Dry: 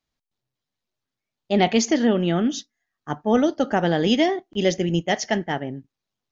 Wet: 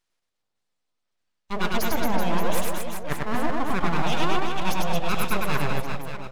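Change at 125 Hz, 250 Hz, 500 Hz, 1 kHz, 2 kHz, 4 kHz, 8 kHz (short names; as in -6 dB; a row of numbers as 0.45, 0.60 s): -2.5 dB, -8.0 dB, -7.0 dB, +0.5 dB, 0.0 dB, -4.5 dB, n/a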